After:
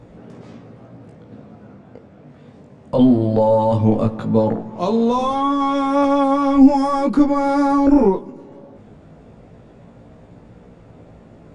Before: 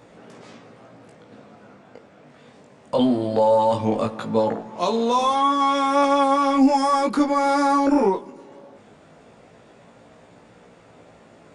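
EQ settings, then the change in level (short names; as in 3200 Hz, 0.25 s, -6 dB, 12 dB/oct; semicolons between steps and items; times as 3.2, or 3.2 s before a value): tilt -4.5 dB/oct; high shelf 3000 Hz +9.5 dB; -2.0 dB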